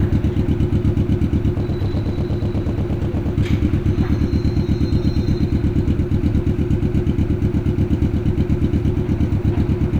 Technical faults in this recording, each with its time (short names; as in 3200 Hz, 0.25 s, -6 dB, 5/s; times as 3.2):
1.57–3.33 clipped -16 dBFS